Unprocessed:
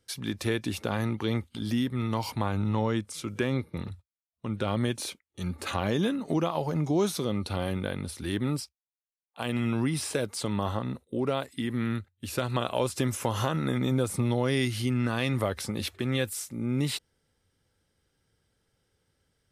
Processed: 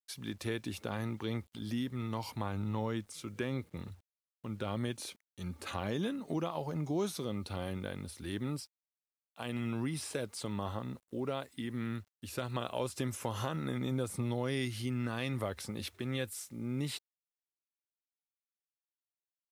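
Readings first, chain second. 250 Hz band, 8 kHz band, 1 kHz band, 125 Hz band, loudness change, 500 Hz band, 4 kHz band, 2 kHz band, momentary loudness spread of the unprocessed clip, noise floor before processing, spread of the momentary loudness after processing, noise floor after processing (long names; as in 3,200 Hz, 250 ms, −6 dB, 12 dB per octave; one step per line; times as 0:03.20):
−8.0 dB, −8.0 dB, −8.0 dB, −8.0 dB, −8.0 dB, −8.0 dB, −8.0 dB, −8.0 dB, 8 LU, below −85 dBFS, 8 LU, below −85 dBFS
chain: bit reduction 10 bits
level −8 dB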